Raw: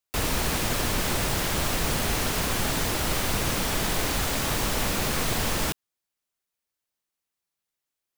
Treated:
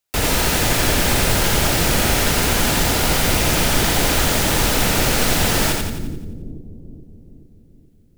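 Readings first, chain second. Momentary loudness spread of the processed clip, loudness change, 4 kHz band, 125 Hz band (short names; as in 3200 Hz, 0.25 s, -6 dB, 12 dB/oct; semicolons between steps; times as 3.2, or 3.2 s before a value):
9 LU, +9.0 dB, +9.0 dB, +9.0 dB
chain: notch 1100 Hz, Q 9.1; split-band echo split 350 Hz, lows 0.427 s, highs 87 ms, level -3.5 dB; gain +7 dB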